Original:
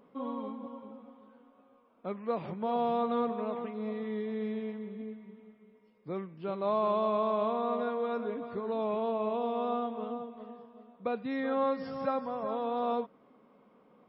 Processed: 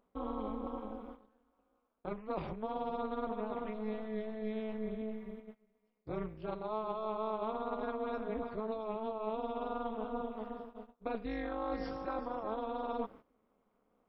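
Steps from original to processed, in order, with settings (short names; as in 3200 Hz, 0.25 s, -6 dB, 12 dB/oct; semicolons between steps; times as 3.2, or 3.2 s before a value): gate -53 dBFS, range -18 dB; reverse; compressor 6:1, threshold -40 dBFS, peak gain reduction 14 dB; reverse; AM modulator 220 Hz, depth 95%; gain +8.5 dB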